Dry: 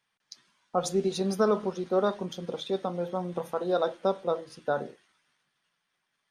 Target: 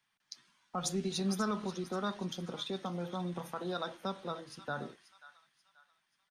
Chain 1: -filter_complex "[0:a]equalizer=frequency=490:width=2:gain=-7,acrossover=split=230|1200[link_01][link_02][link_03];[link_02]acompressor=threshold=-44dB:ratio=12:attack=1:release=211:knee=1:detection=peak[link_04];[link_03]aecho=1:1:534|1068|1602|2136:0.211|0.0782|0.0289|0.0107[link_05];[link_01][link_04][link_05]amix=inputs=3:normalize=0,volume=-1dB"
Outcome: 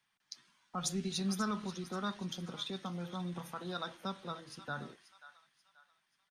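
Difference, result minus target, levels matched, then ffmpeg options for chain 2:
downward compressor: peak gain reduction +8.5 dB
-filter_complex "[0:a]equalizer=frequency=490:width=2:gain=-7,acrossover=split=230|1200[link_01][link_02][link_03];[link_02]acompressor=threshold=-34.5dB:ratio=12:attack=1:release=211:knee=1:detection=peak[link_04];[link_03]aecho=1:1:534|1068|1602|2136:0.211|0.0782|0.0289|0.0107[link_05];[link_01][link_04][link_05]amix=inputs=3:normalize=0,volume=-1dB"

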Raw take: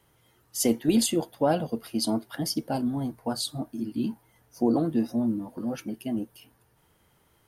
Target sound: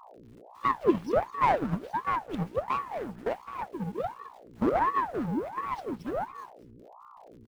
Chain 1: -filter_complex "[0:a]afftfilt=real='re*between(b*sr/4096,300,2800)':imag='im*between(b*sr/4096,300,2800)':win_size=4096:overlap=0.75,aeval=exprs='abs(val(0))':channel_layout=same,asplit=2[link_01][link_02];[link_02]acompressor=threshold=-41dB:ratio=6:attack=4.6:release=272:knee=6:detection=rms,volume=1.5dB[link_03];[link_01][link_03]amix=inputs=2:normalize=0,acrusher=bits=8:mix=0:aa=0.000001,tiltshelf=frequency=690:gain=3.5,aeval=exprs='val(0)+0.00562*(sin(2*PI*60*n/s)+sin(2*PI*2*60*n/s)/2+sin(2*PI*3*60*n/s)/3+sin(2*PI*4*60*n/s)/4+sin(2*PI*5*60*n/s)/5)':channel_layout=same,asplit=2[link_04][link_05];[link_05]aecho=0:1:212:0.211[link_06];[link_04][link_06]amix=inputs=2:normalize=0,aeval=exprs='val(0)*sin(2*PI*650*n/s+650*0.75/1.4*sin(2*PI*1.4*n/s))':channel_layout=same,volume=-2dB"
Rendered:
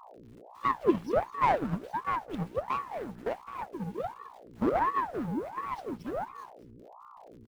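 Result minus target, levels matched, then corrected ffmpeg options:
downward compressor: peak gain reduction +8 dB
-filter_complex "[0:a]afftfilt=real='re*between(b*sr/4096,300,2800)':imag='im*between(b*sr/4096,300,2800)':win_size=4096:overlap=0.75,aeval=exprs='abs(val(0))':channel_layout=same,asplit=2[link_01][link_02];[link_02]acompressor=threshold=-31.5dB:ratio=6:attack=4.6:release=272:knee=6:detection=rms,volume=1.5dB[link_03];[link_01][link_03]amix=inputs=2:normalize=0,acrusher=bits=8:mix=0:aa=0.000001,tiltshelf=frequency=690:gain=3.5,aeval=exprs='val(0)+0.00562*(sin(2*PI*60*n/s)+sin(2*PI*2*60*n/s)/2+sin(2*PI*3*60*n/s)/3+sin(2*PI*4*60*n/s)/4+sin(2*PI*5*60*n/s)/5)':channel_layout=same,asplit=2[link_04][link_05];[link_05]aecho=0:1:212:0.211[link_06];[link_04][link_06]amix=inputs=2:normalize=0,aeval=exprs='val(0)*sin(2*PI*650*n/s+650*0.75/1.4*sin(2*PI*1.4*n/s))':channel_layout=same,volume=-2dB"

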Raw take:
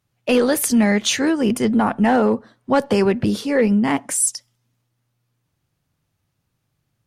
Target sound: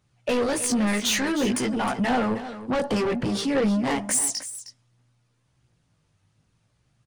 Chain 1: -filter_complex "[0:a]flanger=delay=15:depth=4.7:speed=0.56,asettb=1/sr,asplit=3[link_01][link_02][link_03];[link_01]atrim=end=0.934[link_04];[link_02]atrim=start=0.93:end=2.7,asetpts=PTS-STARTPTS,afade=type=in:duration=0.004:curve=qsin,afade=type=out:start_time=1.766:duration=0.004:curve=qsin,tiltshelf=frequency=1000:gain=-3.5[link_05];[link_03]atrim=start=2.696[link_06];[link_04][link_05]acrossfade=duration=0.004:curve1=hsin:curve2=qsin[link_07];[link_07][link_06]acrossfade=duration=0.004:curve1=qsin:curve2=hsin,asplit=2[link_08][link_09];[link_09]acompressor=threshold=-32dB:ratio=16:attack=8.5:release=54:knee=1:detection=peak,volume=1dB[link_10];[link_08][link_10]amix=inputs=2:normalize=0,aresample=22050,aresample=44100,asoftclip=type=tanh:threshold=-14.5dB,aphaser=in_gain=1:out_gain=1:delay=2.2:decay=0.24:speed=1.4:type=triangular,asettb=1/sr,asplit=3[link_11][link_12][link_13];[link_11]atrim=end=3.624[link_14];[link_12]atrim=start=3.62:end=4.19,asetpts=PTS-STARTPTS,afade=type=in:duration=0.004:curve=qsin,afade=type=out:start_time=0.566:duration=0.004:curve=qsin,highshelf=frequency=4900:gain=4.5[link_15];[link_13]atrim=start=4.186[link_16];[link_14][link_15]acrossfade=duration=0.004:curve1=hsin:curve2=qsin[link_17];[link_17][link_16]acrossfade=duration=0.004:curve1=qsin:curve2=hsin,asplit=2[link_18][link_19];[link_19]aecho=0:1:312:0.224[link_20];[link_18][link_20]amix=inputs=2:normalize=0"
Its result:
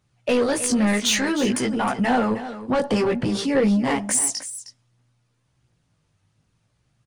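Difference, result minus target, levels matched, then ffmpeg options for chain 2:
soft clipping: distortion −5 dB
-filter_complex "[0:a]flanger=delay=15:depth=4.7:speed=0.56,asettb=1/sr,asplit=3[link_01][link_02][link_03];[link_01]atrim=end=0.934[link_04];[link_02]atrim=start=0.93:end=2.7,asetpts=PTS-STARTPTS,afade=type=in:duration=0.004:curve=qsin,afade=type=out:start_time=1.766:duration=0.004:curve=qsin,tiltshelf=frequency=1000:gain=-3.5[link_05];[link_03]atrim=start=2.696[link_06];[link_04][link_05]acrossfade=duration=0.004:curve1=hsin:curve2=qsin[link_07];[link_07][link_06]acrossfade=duration=0.004:curve1=qsin:curve2=hsin,asplit=2[link_08][link_09];[link_09]acompressor=threshold=-32dB:ratio=16:attack=8.5:release=54:knee=1:detection=peak,volume=1dB[link_10];[link_08][link_10]amix=inputs=2:normalize=0,aresample=22050,aresample=44100,asoftclip=type=tanh:threshold=-20.5dB,aphaser=in_gain=1:out_gain=1:delay=2.2:decay=0.24:speed=1.4:type=triangular,asettb=1/sr,asplit=3[link_11][link_12][link_13];[link_11]atrim=end=3.624[link_14];[link_12]atrim=start=3.62:end=4.19,asetpts=PTS-STARTPTS,afade=type=in:duration=0.004:curve=qsin,afade=type=out:start_time=0.566:duration=0.004:curve=qsin,highshelf=frequency=4900:gain=4.5[link_15];[link_13]atrim=start=4.186[link_16];[link_14][link_15]acrossfade=duration=0.004:curve1=hsin:curve2=qsin[link_17];[link_17][link_16]acrossfade=duration=0.004:curve1=qsin:curve2=hsin,asplit=2[link_18][link_19];[link_19]aecho=0:1:312:0.224[link_20];[link_18][link_20]amix=inputs=2:normalize=0"

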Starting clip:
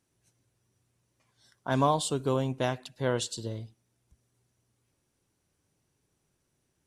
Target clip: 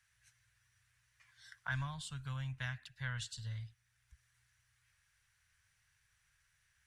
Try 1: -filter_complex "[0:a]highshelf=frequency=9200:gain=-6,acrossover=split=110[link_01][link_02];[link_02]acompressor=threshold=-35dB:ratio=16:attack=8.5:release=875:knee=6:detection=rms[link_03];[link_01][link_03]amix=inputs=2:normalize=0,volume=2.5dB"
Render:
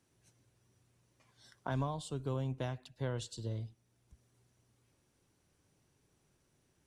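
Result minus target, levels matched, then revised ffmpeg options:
2,000 Hz band −11.5 dB
-filter_complex "[0:a]highshelf=frequency=9200:gain=-6,acrossover=split=110[link_01][link_02];[link_02]acompressor=threshold=-35dB:ratio=16:attack=8.5:release=875:knee=6:detection=rms,highpass=frequency=1700:width_type=q:width=3.4[link_03];[link_01][link_03]amix=inputs=2:normalize=0,volume=2.5dB"

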